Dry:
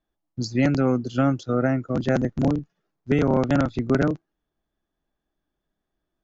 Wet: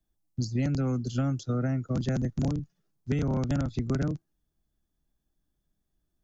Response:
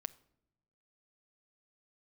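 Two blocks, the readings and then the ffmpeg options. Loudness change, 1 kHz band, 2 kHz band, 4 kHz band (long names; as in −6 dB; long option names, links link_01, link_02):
−6.5 dB, −12.0 dB, −12.0 dB, −6.0 dB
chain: -filter_complex "[0:a]bass=frequency=250:gain=13,treble=frequency=4000:gain=13,acrossover=split=180|410|910[link_01][link_02][link_03][link_04];[link_01]acompressor=threshold=-23dB:ratio=4[link_05];[link_02]acompressor=threshold=-26dB:ratio=4[link_06];[link_03]acompressor=threshold=-31dB:ratio=4[link_07];[link_04]acompressor=threshold=-34dB:ratio=4[link_08];[link_05][link_06][link_07][link_08]amix=inputs=4:normalize=0,volume=-7.5dB"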